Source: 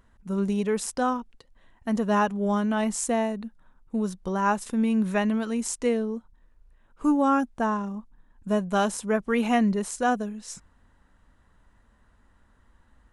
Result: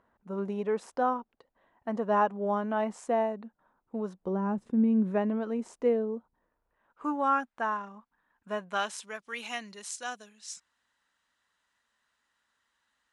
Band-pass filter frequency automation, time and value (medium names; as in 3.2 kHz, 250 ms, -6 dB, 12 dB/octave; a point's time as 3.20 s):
band-pass filter, Q 0.87
4.16 s 710 Hz
4.49 s 170 Hz
5.36 s 520 Hz
6.14 s 520 Hz
7.39 s 1.6 kHz
8.65 s 1.6 kHz
9.15 s 4.6 kHz